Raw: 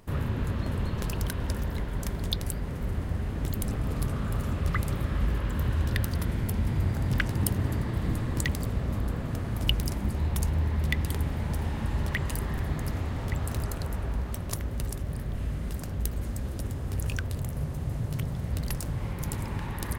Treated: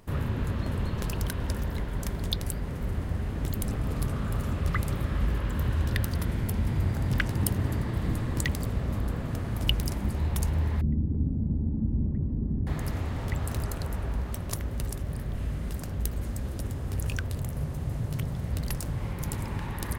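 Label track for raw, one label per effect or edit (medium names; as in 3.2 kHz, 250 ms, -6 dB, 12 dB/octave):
10.810000	12.670000	resonant low-pass 250 Hz, resonance Q 2.3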